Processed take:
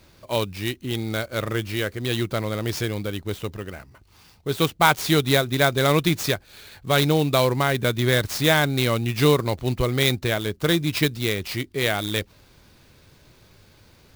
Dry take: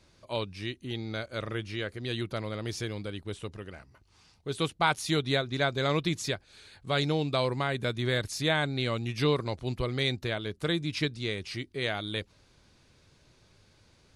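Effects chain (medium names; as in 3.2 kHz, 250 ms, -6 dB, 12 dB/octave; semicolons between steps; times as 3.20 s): sampling jitter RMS 0.023 ms; trim +8.5 dB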